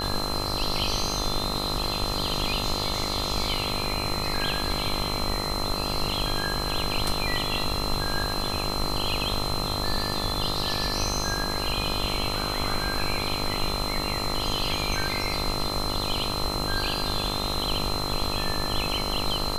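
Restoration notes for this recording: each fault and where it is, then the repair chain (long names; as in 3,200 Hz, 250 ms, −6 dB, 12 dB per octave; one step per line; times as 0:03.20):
mains buzz 50 Hz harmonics 27 −32 dBFS
whistle 4,100 Hz −31 dBFS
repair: hum removal 50 Hz, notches 27
notch filter 4,100 Hz, Q 30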